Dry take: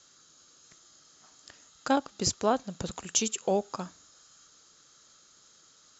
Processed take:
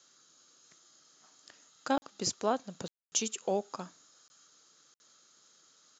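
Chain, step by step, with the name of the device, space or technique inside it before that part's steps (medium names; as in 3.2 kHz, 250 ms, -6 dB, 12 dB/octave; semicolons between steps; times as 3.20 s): call with lost packets (high-pass 170 Hz 12 dB/octave; resampled via 16 kHz; lost packets of 20 ms bursts); trim -4 dB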